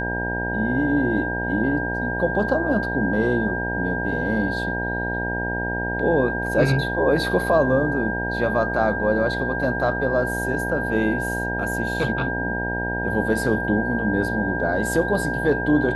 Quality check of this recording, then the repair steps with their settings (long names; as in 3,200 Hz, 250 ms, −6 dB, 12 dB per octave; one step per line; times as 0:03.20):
mains buzz 60 Hz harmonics 16 −28 dBFS
whistle 1,600 Hz −26 dBFS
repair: hum removal 60 Hz, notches 16
notch filter 1,600 Hz, Q 30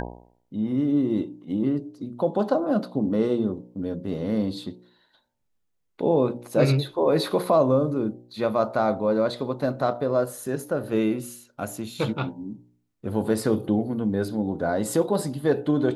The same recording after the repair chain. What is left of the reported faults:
none of them is left